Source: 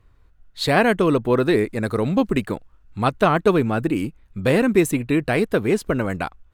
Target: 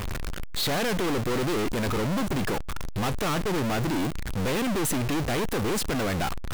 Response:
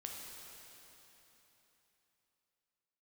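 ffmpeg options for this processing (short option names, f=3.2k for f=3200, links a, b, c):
-af "aeval=exprs='val(0)+0.5*0.0422*sgn(val(0))':c=same,aeval=exprs='(tanh(35.5*val(0)+0.5)-tanh(0.5))/35.5':c=same,volume=5.5dB"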